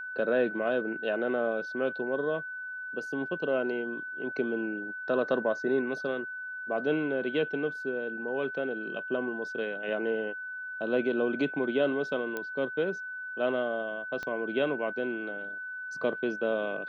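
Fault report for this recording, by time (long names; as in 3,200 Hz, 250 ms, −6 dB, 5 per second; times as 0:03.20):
whistle 1,500 Hz −36 dBFS
0:12.37: click −20 dBFS
0:14.23: click −23 dBFS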